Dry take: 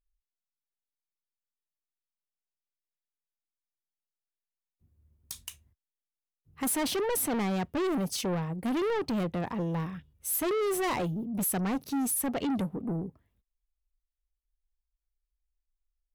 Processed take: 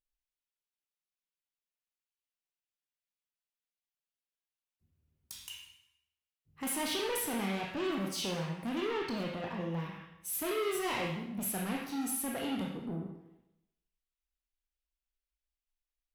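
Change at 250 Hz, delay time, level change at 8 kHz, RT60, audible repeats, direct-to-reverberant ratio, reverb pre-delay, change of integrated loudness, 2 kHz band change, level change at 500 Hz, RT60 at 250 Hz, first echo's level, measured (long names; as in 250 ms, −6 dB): −6.0 dB, no echo audible, −5.0 dB, 0.90 s, no echo audible, −4.5 dB, 18 ms, −5.0 dB, −0.5 dB, −5.0 dB, 0.90 s, no echo audible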